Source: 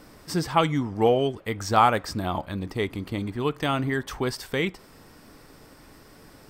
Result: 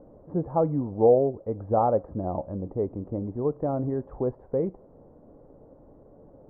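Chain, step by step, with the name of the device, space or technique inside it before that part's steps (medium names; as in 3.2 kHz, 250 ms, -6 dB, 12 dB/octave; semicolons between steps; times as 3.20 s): under water (low-pass 790 Hz 24 dB/octave; peaking EQ 540 Hz +8.5 dB 0.46 oct); trim -2 dB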